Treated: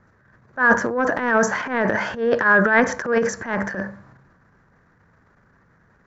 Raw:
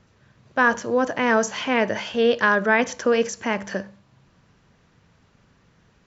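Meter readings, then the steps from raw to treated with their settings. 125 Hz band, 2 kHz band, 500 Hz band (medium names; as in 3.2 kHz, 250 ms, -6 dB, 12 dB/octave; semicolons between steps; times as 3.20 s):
+5.5 dB, +4.0 dB, +0.5 dB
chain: resonant high shelf 2.2 kHz -9 dB, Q 3; transient shaper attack -11 dB, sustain +10 dB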